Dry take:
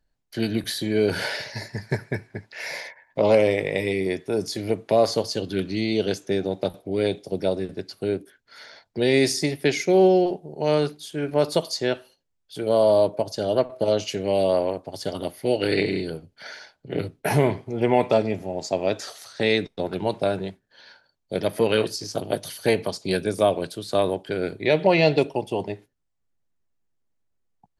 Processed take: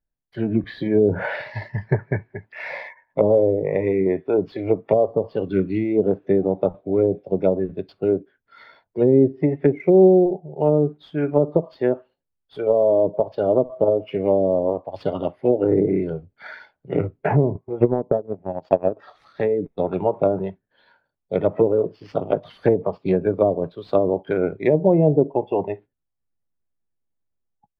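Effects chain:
treble cut that deepens with the level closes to 490 Hz, closed at −17 dBFS
noise reduction from a noise print of the clip's start 11 dB
0:17.55–0:18.97: transient designer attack +10 dB, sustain −11 dB
automatic gain control gain up to 6.5 dB
in parallel at −10 dB: sample-rate reduction 8,000 Hz, jitter 0%
on the sum: high-frequency loss of the air 460 metres
level −1.5 dB

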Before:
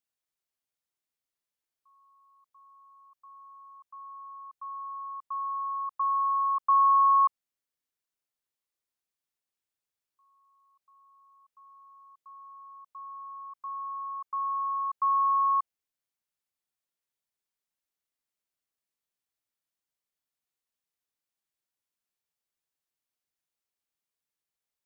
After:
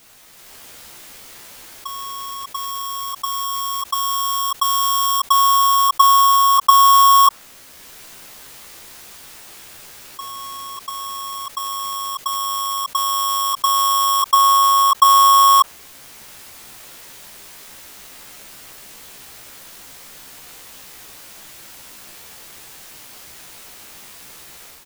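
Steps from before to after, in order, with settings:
each half-wave held at its own peak
dynamic equaliser 1,100 Hz, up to +6 dB, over −34 dBFS, Q 1.7
automatic gain control gain up to 16.5 dB
double-tracking delay 15 ms −4.5 dB
envelope flattener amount 50%
level −2.5 dB

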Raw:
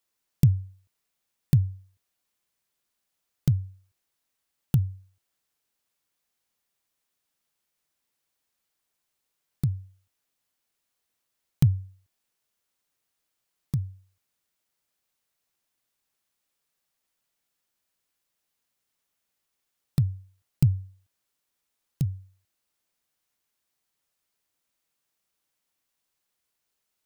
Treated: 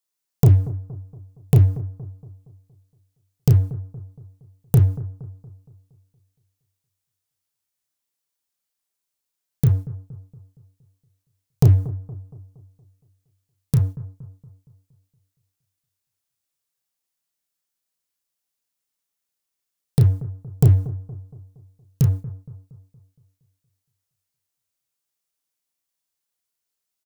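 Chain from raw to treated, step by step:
bass and treble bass 0 dB, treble +6 dB
leveller curve on the samples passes 3
double-tracking delay 32 ms −6.5 dB
bucket-brigade delay 233 ms, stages 2,048, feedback 47%, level −16 dB
level −1.5 dB

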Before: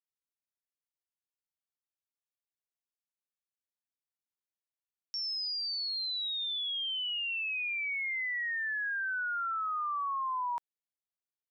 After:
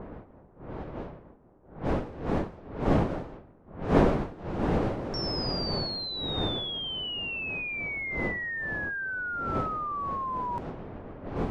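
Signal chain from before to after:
wind on the microphone 610 Hz −36 dBFS
low-shelf EQ 490 Hz +5.5 dB
low-pass that shuts in the quiet parts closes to 1,100 Hz, open at −28 dBFS

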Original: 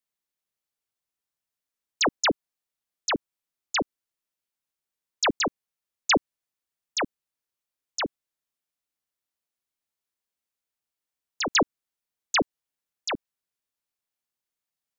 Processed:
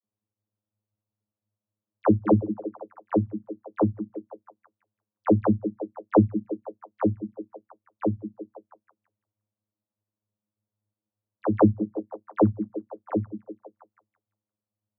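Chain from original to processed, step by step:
low-pass filter 1,300 Hz 24 dB per octave
spectral tilt −3.5 dB per octave
channel vocoder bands 32, saw 105 Hz
echo through a band-pass that steps 172 ms, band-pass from 240 Hz, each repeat 0.7 octaves, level −9 dB
level +4 dB

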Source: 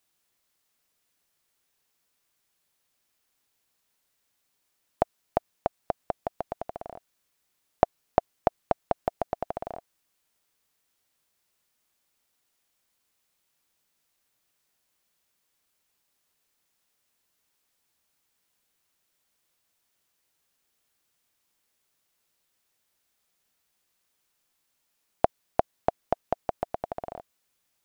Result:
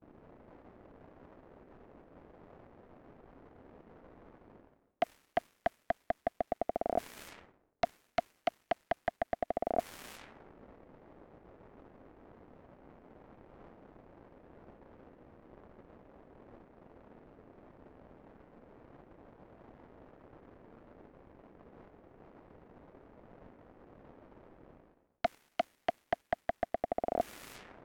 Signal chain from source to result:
octave-band graphic EQ 125/250/500/1,000/2,000/4,000 Hz −12/+7/+3/−6/+5/−5 dB
surface crackle 350 per second −58 dBFS
sine wavefolder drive 16 dB, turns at −2 dBFS
low-pass that shuts in the quiet parts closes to 360 Hz, open at −34 dBFS
noise gate with hold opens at −60 dBFS
reversed playback
downward compressor 16 to 1, threshold −37 dBFS, peak gain reduction 29.5 dB
reversed playback
high-shelf EQ 3,100 Hz −8.5 dB
level +8 dB

